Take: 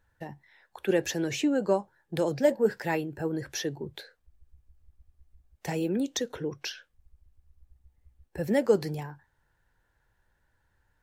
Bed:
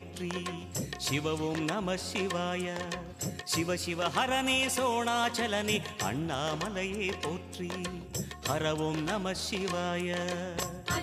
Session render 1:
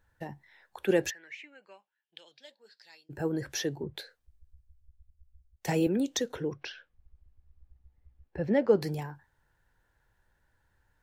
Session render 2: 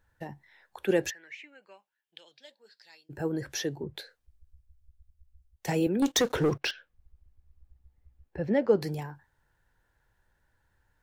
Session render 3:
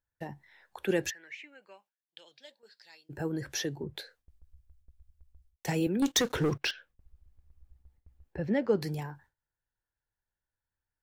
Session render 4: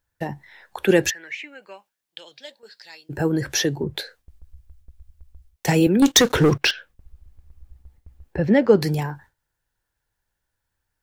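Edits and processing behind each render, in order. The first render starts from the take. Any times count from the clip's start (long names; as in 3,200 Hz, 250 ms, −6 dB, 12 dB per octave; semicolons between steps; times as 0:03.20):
0:01.09–0:03.09: resonant band-pass 1,800 Hz → 5,000 Hz, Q 6.9; 0:03.83–0:05.87: multiband upward and downward expander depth 40%; 0:06.53–0:08.82: high-frequency loss of the air 230 metres
0:06.02–0:06.71: leveller curve on the samples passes 3
noise gate with hold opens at −53 dBFS; dynamic equaliser 590 Hz, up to −5 dB, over −37 dBFS, Q 0.81
level +12 dB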